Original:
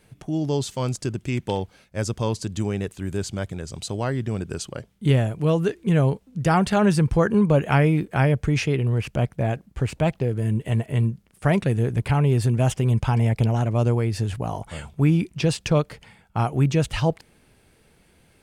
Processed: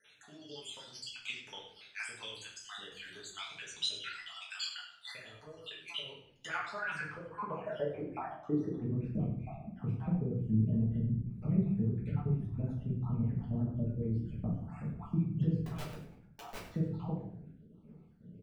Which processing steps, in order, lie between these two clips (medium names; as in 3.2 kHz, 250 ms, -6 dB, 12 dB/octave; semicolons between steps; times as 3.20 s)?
random holes in the spectrogram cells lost 64%; peaking EQ 1.3 kHz +5 dB 0.35 oct; compression 6:1, threshold -33 dBFS, peak gain reduction 17 dB; in parallel at +1 dB: peak limiter -29 dBFS, peak gain reduction 9.5 dB; on the sum: vibrato 12 Hz 33 cents; band-pass sweep 3.4 kHz -> 200 Hz, 5.96–9.18 s; 15.66–16.65 s: integer overflow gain 41 dB; frequency-shifting echo 99 ms, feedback 34%, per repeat -40 Hz, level -13.5 dB; simulated room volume 74 m³, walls mixed, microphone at 1.5 m; trim -2 dB